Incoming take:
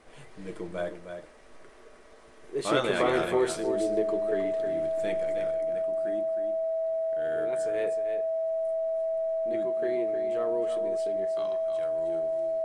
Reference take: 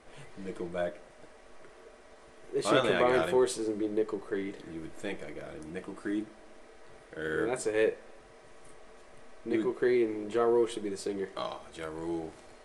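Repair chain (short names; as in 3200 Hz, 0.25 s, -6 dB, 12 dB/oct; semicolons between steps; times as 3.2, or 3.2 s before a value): notch 650 Hz, Q 30; inverse comb 0.312 s -8 dB; gain correction +7.5 dB, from 5.51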